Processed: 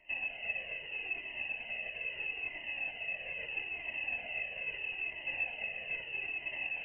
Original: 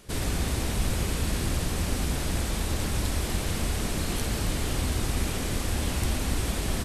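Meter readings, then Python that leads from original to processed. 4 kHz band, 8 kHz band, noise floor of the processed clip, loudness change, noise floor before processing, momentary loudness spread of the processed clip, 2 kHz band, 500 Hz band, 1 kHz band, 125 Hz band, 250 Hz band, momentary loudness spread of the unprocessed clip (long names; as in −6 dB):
−12.0 dB, below −40 dB, −47 dBFS, −7.5 dB, −31 dBFS, 3 LU, +2.5 dB, −16.0 dB, −16.5 dB, −35.5 dB, −29.5 dB, 1 LU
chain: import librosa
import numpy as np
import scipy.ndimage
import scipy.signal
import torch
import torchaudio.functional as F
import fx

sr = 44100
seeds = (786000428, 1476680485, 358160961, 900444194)

p1 = fx.over_compress(x, sr, threshold_db=-30.0, ratio=-0.5)
p2 = x + (p1 * librosa.db_to_amplitude(2.0))
p3 = fx.vowel_filter(p2, sr, vowel='u')
p4 = fx.freq_invert(p3, sr, carrier_hz=2900)
p5 = fx.doubler(p4, sr, ms=13.0, db=-13.0)
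p6 = p5 + fx.echo_single(p5, sr, ms=346, db=-8.0, dry=0)
p7 = fx.comb_cascade(p6, sr, direction='falling', hz=0.77)
y = p7 * librosa.db_to_amplitude(1.5)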